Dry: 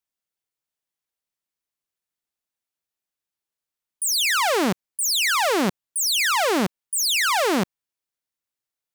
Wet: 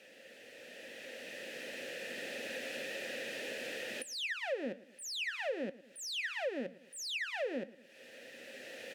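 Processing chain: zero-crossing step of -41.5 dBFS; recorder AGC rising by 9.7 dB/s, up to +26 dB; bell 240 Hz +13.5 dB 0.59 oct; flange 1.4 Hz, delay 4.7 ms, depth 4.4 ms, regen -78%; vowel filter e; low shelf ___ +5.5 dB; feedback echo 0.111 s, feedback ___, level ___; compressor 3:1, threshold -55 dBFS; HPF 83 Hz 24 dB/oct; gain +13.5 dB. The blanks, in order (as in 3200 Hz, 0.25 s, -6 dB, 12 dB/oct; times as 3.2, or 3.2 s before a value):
110 Hz, 30%, -22 dB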